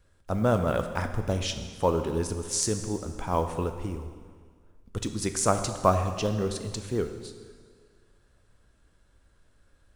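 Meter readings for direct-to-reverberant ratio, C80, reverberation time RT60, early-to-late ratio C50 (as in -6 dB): 7.0 dB, 9.5 dB, 1.8 s, 8.5 dB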